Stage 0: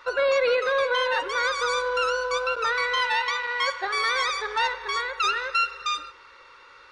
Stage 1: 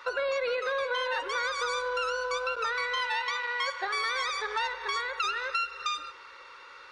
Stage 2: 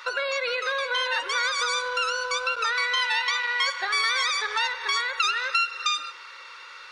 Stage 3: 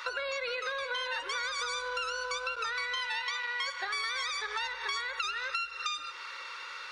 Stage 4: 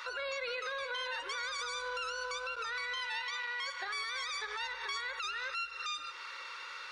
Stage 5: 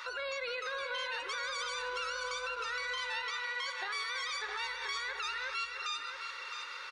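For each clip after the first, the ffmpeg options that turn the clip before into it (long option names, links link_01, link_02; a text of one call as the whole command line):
ffmpeg -i in.wav -filter_complex "[0:a]lowshelf=frequency=210:gain=-9,acrossover=split=130[link_01][link_02];[link_02]acompressor=threshold=-31dB:ratio=3[link_03];[link_01][link_03]amix=inputs=2:normalize=0,volume=1.5dB" out.wav
ffmpeg -i in.wav -af "tiltshelf=frequency=1100:gain=-7,volume=3dB" out.wav
ffmpeg -i in.wav -filter_complex "[0:a]acrossover=split=220[link_01][link_02];[link_02]acompressor=threshold=-36dB:ratio=3[link_03];[link_01][link_03]amix=inputs=2:normalize=0,volume=1dB" out.wav
ffmpeg -i in.wav -af "alimiter=level_in=3dB:limit=-24dB:level=0:latency=1:release=28,volume=-3dB,volume=-2.5dB" out.wav
ffmpeg -i in.wav -af "aecho=1:1:665|1330|1995|2660|3325:0.422|0.181|0.078|0.0335|0.0144" out.wav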